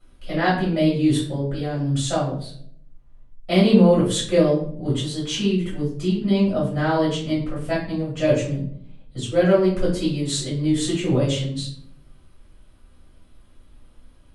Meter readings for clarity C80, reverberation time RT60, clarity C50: 9.0 dB, 0.60 s, 4.5 dB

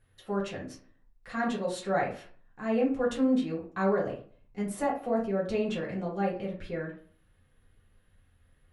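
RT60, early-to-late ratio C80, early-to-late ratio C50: 0.50 s, 13.0 dB, 7.5 dB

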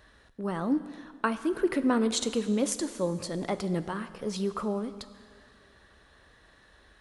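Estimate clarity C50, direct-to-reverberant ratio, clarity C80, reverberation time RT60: 13.0 dB, 11.5 dB, 14.0 dB, 2.0 s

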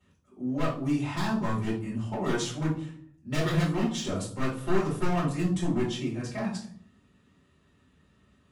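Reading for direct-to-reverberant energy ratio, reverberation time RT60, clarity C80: -9.5 dB, 0.55 s, 11.0 dB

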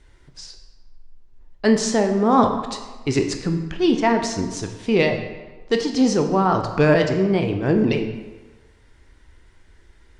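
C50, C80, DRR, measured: 7.5 dB, 9.0 dB, 5.0 dB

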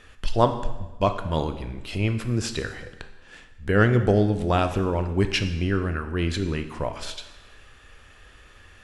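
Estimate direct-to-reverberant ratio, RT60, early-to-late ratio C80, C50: 8.0 dB, 1.1 s, 12.0 dB, 10.5 dB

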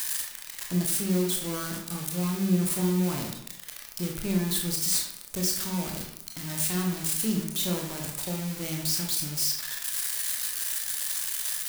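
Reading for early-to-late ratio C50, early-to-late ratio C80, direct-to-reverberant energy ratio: 4.0 dB, 6.5 dB, -0.5 dB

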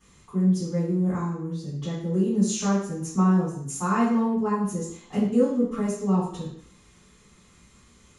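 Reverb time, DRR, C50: 0.60 s, -13.5 dB, 2.0 dB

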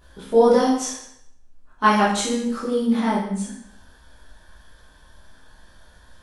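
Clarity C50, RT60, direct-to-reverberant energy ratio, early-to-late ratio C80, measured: 2.5 dB, 0.70 s, -10.0 dB, 6.5 dB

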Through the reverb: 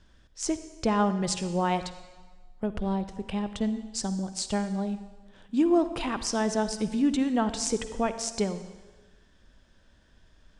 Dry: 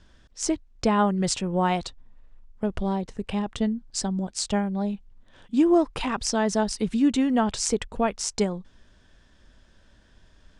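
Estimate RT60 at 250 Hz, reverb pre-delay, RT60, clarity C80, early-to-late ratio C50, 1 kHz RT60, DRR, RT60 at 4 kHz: 1.4 s, 40 ms, 1.3 s, 12.5 dB, 11.0 dB, 1.3 s, 11.0 dB, 1.2 s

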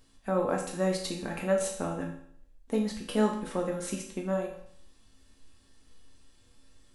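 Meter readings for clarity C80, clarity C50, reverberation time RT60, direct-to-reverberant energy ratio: 9.0 dB, 6.0 dB, 0.65 s, -1.0 dB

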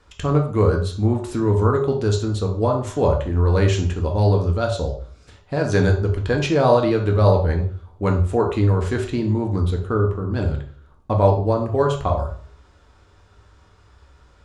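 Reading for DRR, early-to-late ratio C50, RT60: 1.5 dB, 7.5 dB, 0.45 s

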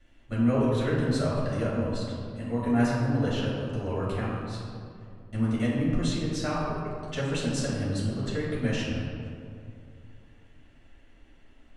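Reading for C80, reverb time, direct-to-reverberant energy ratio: 1.0 dB, 2.4 s, -8.5 dB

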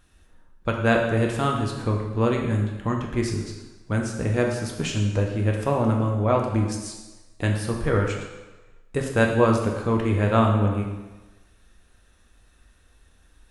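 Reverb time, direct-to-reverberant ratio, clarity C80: 1.2 s, 0.5 dB, 6.5 dB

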